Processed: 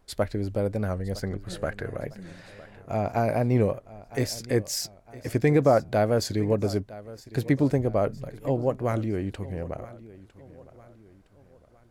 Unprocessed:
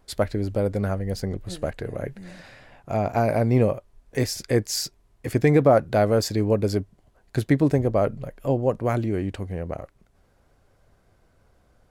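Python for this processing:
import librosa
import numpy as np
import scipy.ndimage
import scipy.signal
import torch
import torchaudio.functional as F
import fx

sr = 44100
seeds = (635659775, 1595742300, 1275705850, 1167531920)

y = fx.peak_eq(x, sr, hz=1500.0, db=9.0, octaves=0.84, at=(1.22, 1.98))
y = fx.echo_feedback(y, sr, ms=959, feedback_pct=43, wet_db=-18.5)
y = fx.record_warp(y, sr, rpm=45.0, depth_cents=100.0)
y = F.gain(torch.from_numpy(y), -3.0).numpy()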